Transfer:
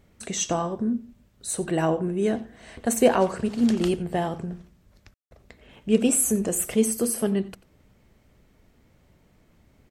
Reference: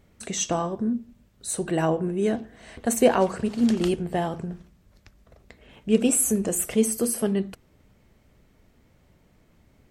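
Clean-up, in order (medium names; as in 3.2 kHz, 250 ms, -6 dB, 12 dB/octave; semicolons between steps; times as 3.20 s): room tone fill 5.14–5.31 s; inverse comb 90 ms -19.5 dB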